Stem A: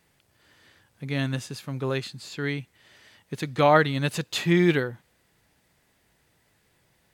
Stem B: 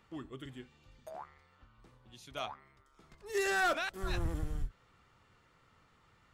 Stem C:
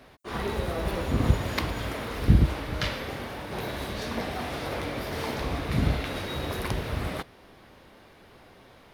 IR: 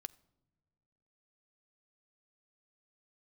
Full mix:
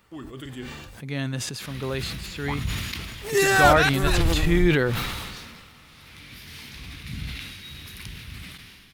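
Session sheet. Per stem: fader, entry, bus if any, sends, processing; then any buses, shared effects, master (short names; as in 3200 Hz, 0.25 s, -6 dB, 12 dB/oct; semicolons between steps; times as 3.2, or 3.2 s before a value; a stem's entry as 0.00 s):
-2.0 dB, 0.00 s, no send, backwards sustainer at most 150 dB/s
+1.5 dB, 0.00 s, muted 0.96–2.48, send -6 dB, high shelf 11000 Hz +10 dB; AGC gain up to 8 dB
4.51 s -9 dB -> 4.79 s -19.5 dB -> 5.88 s -19.5 dB -> 6.32 s -9.5 dB, 1.35 s, no send, EQ curve 190 Hz 0 dB, 590 Hz -20 dB, 2500 Hz +7 dB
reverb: on, pre-delay 4 ms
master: sustainer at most 32 dB/s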